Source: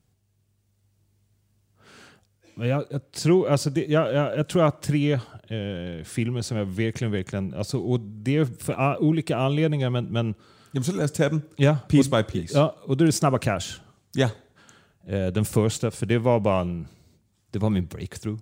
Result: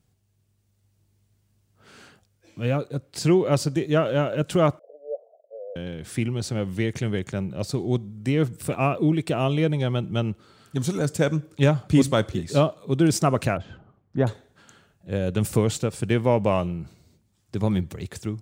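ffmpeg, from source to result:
-filter_complex "[0:a]asettb=1/sr,asplit=3[a][b][c];[a]atrim=end=4.794[d];[b]atrim=start=4.79:end=5.76,asetpts=PTS-STARTPTS,afade=t=in:d=0.004:c=qsin,afade=t=out:st=0.966:d=0.004:c=qsin,asuperpass=centerf=570:order=8:qfactor=2.4[e];[c]atrim=start=5.756[f];[d][e]acrossfade=d=0.004:c1=hsin:c2=qsin[g];[g][f]acrossfade=d=0.004:c1=qsin:c2=hsin,asettb=1/sr,asplit=3[h][i][j];[h]atrim=end=13.574[k];[i]atrim=start=13.57:end=14.27,asetpts=PTS-STARTPTS,afade=t=in:d=0.004:c=qsin,afade=t=out:st=0.696:d=0.004:c=qsin,lowpass=1.2k[l];[j]atrim=start=14.266[m];[k][l]acrossfade=d=0.004:c1=hsin:c2=qsin[n];[n][m]acrossfade=d=0.004:c1=qsin:c2=hsin"

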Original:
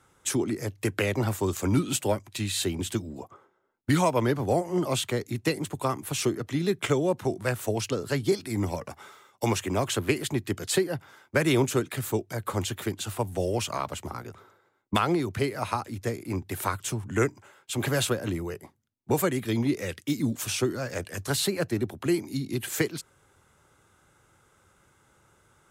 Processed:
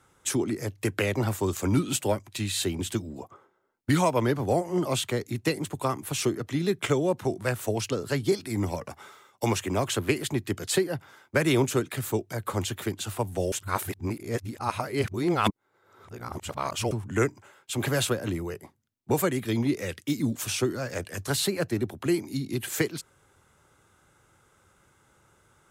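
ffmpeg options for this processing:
-filter_complex "[0:a]asplit=3[a][b][c];[a]atrim=end=13.522[d];[b]atrim=start=13.518:end=16.912,asetpts=PTS-STARTPTS,areverse[e];[c]atrim=start=16.908[f];[d][e]acrossfade=d=0.004:c1=hsin:c2=hsin[g];[g][f]acrossfade=d=0.004:c1=hsin:c2=hsin"

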